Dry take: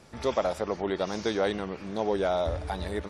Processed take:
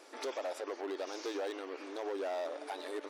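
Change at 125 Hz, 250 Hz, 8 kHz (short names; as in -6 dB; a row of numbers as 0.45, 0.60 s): under -40 dB, -11.5 dB, -5.0 dB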